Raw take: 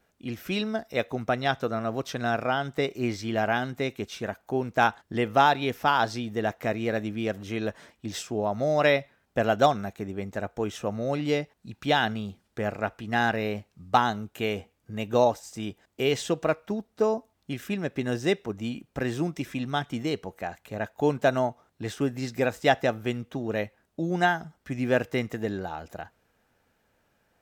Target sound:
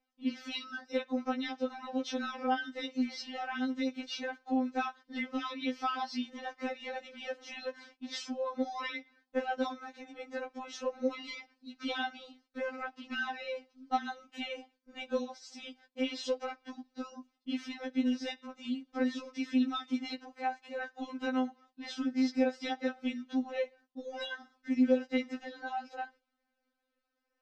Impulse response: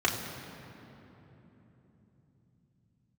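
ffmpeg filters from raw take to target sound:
-af "lowpass=f=5k:t=q:w=2.5,agate=range=-13dB:threshold=-53dB:ratio=16:detection=peak,acompressor=threshold=-28dB:ratio=4,aemphasis=mode=reproduction:type=cd,afftfilt=real='re*3.46*eq(mod(b,12),0)':imag='im*3.46*eq(mod(b,12),0)':win_size=2048:overlap=0.75"

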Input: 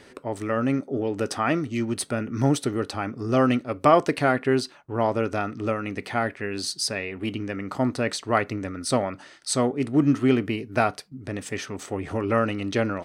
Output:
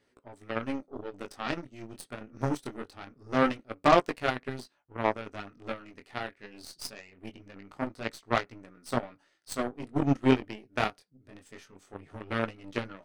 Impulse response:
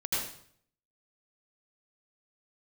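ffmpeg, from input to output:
-af "flanger=delay=16.5:depth=7.4:speed=0.23,aeval=exprs='0.447*(cos(1*acos(clip(val(0)/0.447,-1,1)))-cos(1*PI/2))+0.0251*(cos(6*acos(clip(val(0)/0.447,-1,1)))-cos(6*PI/2))+0.0562*(cos(7*acos(clip(val(0)/0.447,-1,1)))-cos(7*PI/2))':c=same"

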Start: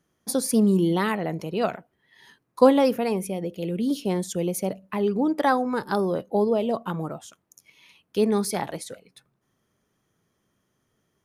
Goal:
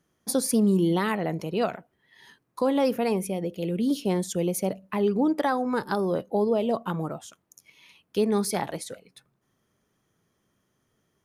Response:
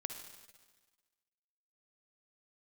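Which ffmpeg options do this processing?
-af "alimiter=limit=-14dB:level=0:latency=1:release=193"

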